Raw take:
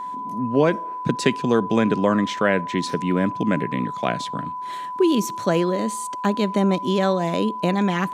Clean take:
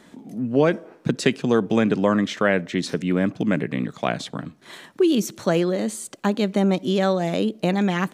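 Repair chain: band-stop 1 kHz, Q 30

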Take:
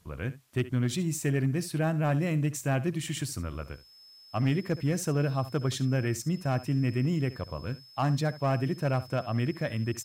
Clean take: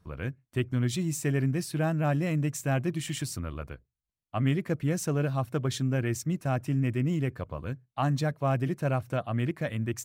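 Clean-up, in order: clip repair -20 dBFS; band-stop 5.2 kHz, Q 30; expander -42 dBFS, range -21 dB; inverse comb 70 ms -16.5 dB

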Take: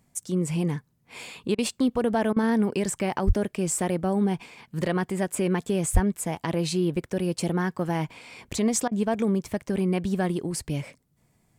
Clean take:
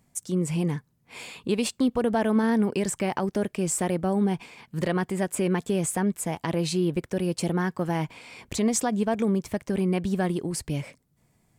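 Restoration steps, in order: 3.26–3.38 s: high-pass 140 Hz 24 dB/octave; 5.93–6.05 s: high-pass 140 Hz 24 dB/octave; interpolate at 1.55/2.33/8.88 s, 33 ms

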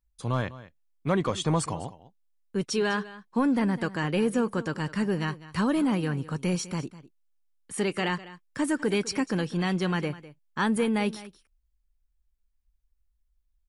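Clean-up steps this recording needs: clip repair -15.5 dBFS; inverse comb 202 ms -17 dB

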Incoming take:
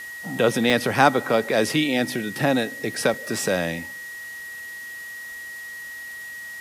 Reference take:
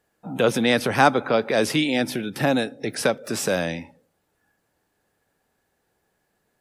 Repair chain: band-stop 1.9 kHz, Q 30; interpolate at 0.70/3.14 s, 1.6 ms; noise print and reduce 30 dB

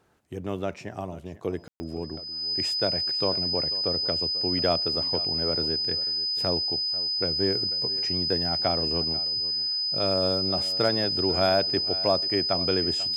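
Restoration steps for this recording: clip repair -11.5 dBFS; band-stop 5 kHz, Q 30; room tone fill 1.68–1.80 s; inverse comb 492 ms -17.5 dB

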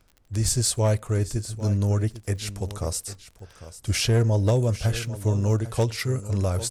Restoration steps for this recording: clip repair -14.5 dBFS; de-click; expander -42 dBFS, range -21 dB; inverse comb 798 ms -14.5 dB

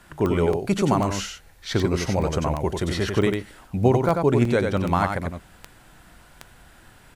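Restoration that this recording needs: de-click; interpolate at 0.53/1.65/2.22/3.22/4.09/4.45/4.77 s, 3.2 ms; inverse comb 93 ms -5 dB

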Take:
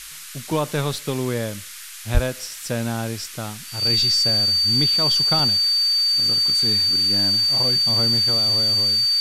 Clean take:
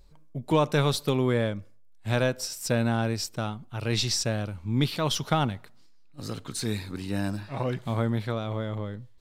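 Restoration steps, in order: band-stop 4.6 kHz, Q 30; de-plosive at 2.13 s; interpolate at 2.40/3.87/5.39 s, 2 ms; noise print and reduce 13 dB

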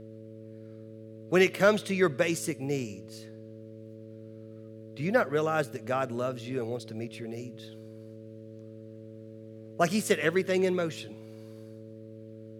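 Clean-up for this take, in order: clip repair -9.5 dBFS; de-hum 110.1 Hz, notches 5

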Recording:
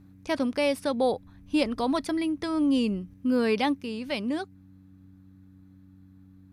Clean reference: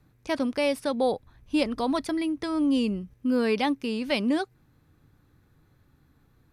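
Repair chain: de-hum 94.6 Hz, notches 3; trim 0 dB, from 3.81 s +4.5 dB

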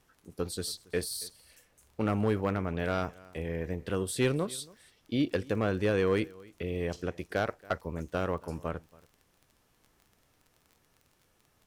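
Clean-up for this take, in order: clip repair -19 dBFS; de-click; expander -61 dBFS, range -21 dB; inverse comb 278 ms -23.5 dB

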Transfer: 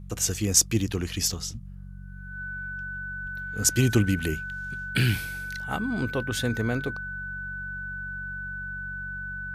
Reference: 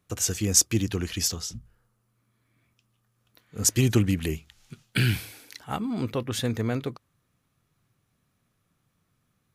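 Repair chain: clip repair -7.5 dBFS; de-hum 47.1 Hz, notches 4; band-stop 1.5 kHz, Q 30; de-plosive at 3.22 s

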